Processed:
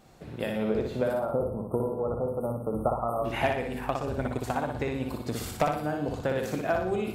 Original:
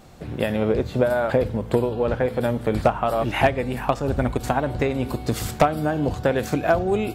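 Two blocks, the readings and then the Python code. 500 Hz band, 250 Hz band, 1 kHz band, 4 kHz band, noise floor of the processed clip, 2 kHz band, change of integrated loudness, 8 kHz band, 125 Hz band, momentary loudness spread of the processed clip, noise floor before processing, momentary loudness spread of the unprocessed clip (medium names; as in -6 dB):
-7.0 dB, -7.0 dB, -7.0 dB, -7.5 dB, -41 dBFS, -7.5 dB, -7.5 dB, -7.0 dB, -8.5 dB, 4 LU, -35 dBFS, 5 LU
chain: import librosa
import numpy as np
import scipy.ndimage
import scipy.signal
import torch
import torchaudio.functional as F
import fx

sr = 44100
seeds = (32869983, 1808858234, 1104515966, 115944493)

y = fx.spec_erase(x, sr, start_s=1.13, length_s=2.11, low_hz=1400.0, high_hz=8400.0)
y = fx.low_shelf(y, sr, hz=98.0, db=-5.0)
y = fx.echo_feedback(y, sr, ms=60, feedback_pct=48, wet_db=-4.0)
y = y * 10.0 ** (-8.5 / 20.0)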